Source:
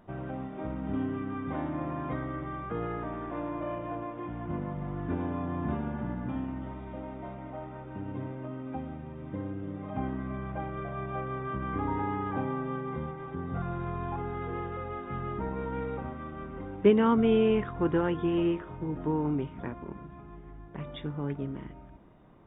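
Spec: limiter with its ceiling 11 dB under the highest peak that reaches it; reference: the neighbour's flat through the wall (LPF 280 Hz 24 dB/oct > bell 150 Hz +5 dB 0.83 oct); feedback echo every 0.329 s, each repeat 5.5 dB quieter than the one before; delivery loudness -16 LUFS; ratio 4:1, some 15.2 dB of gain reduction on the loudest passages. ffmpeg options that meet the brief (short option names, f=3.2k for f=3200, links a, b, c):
-af "acompressor=threshold=-34dB:ratio=4,alimiter=level_in=9dB:limit=-24dB:level=0:latency=1,volume=-9dB,lowpass=f=280:w=0.5412,lowpass=f=280:w=1.3066,equalizer=f=150:t=o:w=0.83:g=5,aecho=1:1:329|658|987|1316|1645|1974|2303:0.531|0.281|0.149|0.079|0.0419|0.0222|0.0118,volume=25dB"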